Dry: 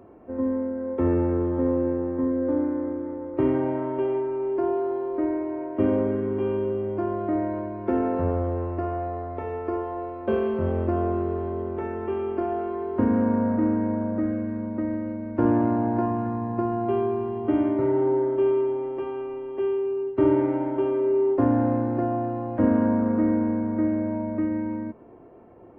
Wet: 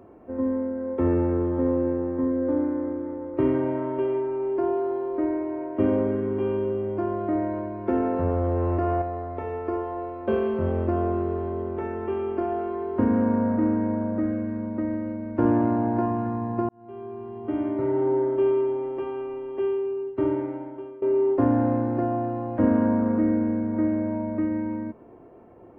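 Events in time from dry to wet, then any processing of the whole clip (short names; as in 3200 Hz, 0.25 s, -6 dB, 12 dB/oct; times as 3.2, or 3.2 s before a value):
3.35–4.23 notch 800 Hz
8.29–9.02 fast leveller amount 100%
16.69–18.2 fade in
19.65–21.02 fade out, to -20.5 dB
23.18–23.74 bell 970 Hz -5 dB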